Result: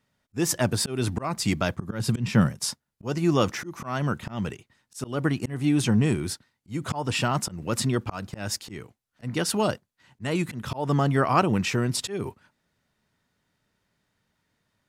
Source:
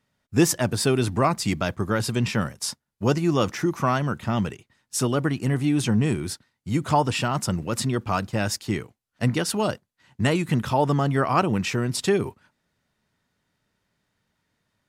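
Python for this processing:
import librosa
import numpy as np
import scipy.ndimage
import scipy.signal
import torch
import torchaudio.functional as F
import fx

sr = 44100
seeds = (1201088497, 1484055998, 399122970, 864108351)

y = fx.auto_swell(x, sr, attack_ms=220.0)
y = fx.peak_eq(y, sr, hz=160.0, db=8.5, octaves=1.4, at=(1.78, 2.65))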